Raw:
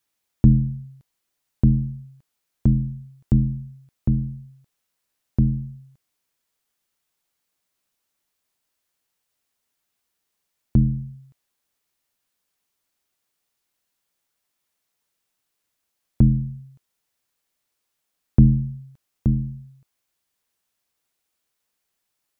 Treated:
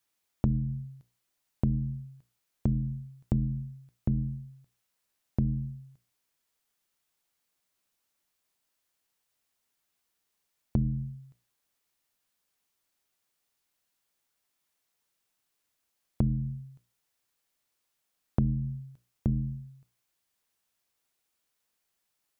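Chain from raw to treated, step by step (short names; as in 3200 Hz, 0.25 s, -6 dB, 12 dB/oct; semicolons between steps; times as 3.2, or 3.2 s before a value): notches 60/120/180/240/300/360/420/480/540/600 Hz; compressor 5:1, threshold -22 dBFS, peak gain reduction 12 dB; gain -2 dB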